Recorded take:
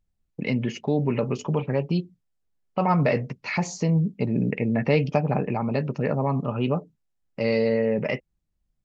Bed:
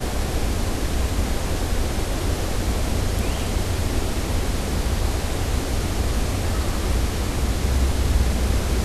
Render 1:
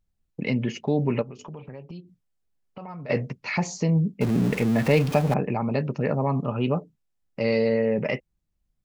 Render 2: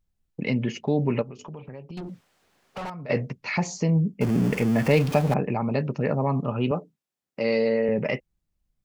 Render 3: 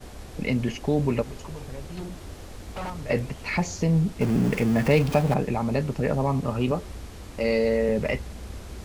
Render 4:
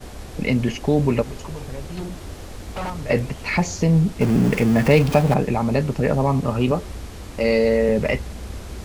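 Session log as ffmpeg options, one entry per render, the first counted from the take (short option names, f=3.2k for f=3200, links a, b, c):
-filter_complex "[0:a]asplit=3[a][b][c];[a]afade=t=out:st=1.21:d=0.02[d];[b]acompressor=threshold=-39dB:ratio=4:attack=3.2:release=140:knee=1:detection=peak,afade=t=in:st=1.21:d=0.02,afade=t=out:st=3.09:d=0.02[e];[c]afade=t=in:st=3.09:d=0.02[f];[d][e][f]amix=inputs=3:normalize=0,asettb=1/sr,asplit=3[g][h][i];[g]atrim=end=4.214[j];[h]atrim=start=4.21:end=5.34,asetpts=PTS-STARTPTS,afade=t=in:d=0.004:c=qsin,afade=t=out:st=1.126:d=0.004:c=qsin,aeval=exprs='val(0)+0.5*0.0376*sgn(val(0))':c=same[k];[i]atrim=start=5.336[l];[j][k]acrossfade=d=0.004:c1=hsin:c2=qsin[m];[m][l]acrossfade=d=0.004:c1=qsin:c2=hsin"
-filter_complex "[0:a]asettb=1/sr,asplit=3[a][b][c];[a]atrim=end=1.974[d];[b]atrim=start=1.97:end=2.9,asetpts=PTS-STARTPTS,afade=t=in:d=0.004:c=qsin,afade=t=out:st=0.926:d=0.004:c=qsin,asplit=2[e][f];[f]highpass=f=720:p=1,volume=37dB,asoftclip=type=tanh:threshold=-26.5dB[g];[e][g]amix=inputs=2:normalize=0,lowpass=f=2.1k:p=1,volume=-6dB[h];[c]atrim=start=2.896[i];[d][h]acrossfade=d=0.004:c1=hsin:c2=qsin[j];[j][i]acrossfade=d=0.004:c1=qsin:c2=hsin,asettb=1/sr,asplit=3[k][l][m];[k]atrim=end=3.794[n];[l]atrim=start=3.79:end=4.91,asetpts=PTS-STARTPTS,afade=t=in:d=0.004:c=qsin,afade=t=out:st=1.116:d=0.004:c=qsin,bandreject=f=3.9k:w=6.7[o];[m]atrim=start=4.906[p];[n][o]acrossfade=d=0.004:c1=hsin:c2=qsin[q];[q][p]acrossfade=d=0.004:c1=qsin:c2=hsin,asettb=1/sr,asplit=3[r][s][t];[r]atrim=end=6.714[u];[s]atrim=start=6.71:end=7.89,asetpts=PTS-STARTPTS,afade=t=in:d=0.004:c=qsin,afade=t=out:st=1.176:d=0.004:c=qsin,highpass=190[v];[t]atrim=start=7.886[w];[u][v]acrossfade=d=0.004:c1=hsin:c2=qsin[x];[x][w]acrossfade=d=0.004:c1=qsin:c2=hsin"
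-filter_complex "[1:a]volume=-17dB[a];[0:a][a]amix=inputs=2:normalize=0"
-af "volume=5dB"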